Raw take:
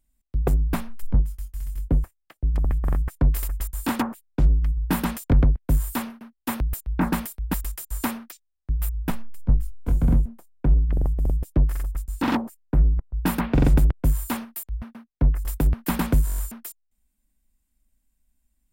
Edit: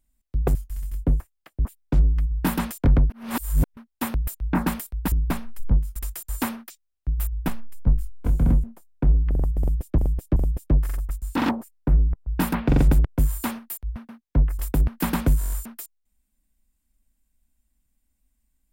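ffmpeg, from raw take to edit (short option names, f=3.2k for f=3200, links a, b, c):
-filter_complex "[0:a]asplit=9[a][b][c][d][e][f][g][h][i];[a]atrim=end=0.552[j];[b]atrim=start=1.388:end=2.492[k];[c]atrim=start=4.108:end=5.562[l];[d]atrim=start=5.558:end=6.232,asetpts=PTS-STARTPTS,areverse[m];[e]atrim=start=6.228:end=7.582[n];[f]atrim=start=0.548:end=1.392[o];[g]atrim=start=7.578:end=11.602[p];[h]atrim=start=11.218:end=11.602[q];[i]atrim=start=11.218[r];[j][k]acrossfade=d=0.004:c1=hsin:c2=hsin[s];[s][l]acrossfade=d=0.004:c1=hsin:c2=hsin[t];[t][m]acrossfade=d=0.004:c1=hsin:c2=hsin[u];[u][n]acrossfade=d=0.004:c1=hsin:c2=hsin[v];[v][o]acrossfade=d=0.004:c1=hsin:c2=hsin[w];[w][p]acrossfade=d=0.004:c1=hsin:c2=hsin[x];[x][q]acrossfade=d=0.004:c1=hsin:c2=hsin[y];[y][r]acrossfade=d=0.004:c1=hsin:c2=hsin"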